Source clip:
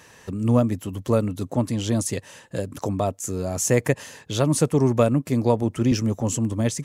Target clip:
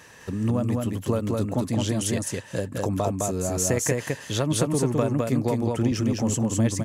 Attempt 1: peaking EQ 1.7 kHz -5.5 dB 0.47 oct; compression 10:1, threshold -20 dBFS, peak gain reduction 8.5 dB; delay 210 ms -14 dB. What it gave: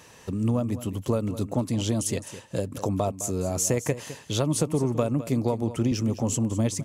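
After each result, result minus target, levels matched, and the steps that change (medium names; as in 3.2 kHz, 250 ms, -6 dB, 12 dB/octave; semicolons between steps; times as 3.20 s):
echo-to-direct -11.5 dB; 2 kHz band -4.0 dB
change: delay 210 ms -2.5 dB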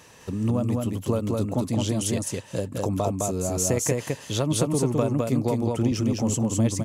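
2 kHz band -4.0 dB
change: peaking EQ 1.7 kHz +2.5 dB 0.47 oct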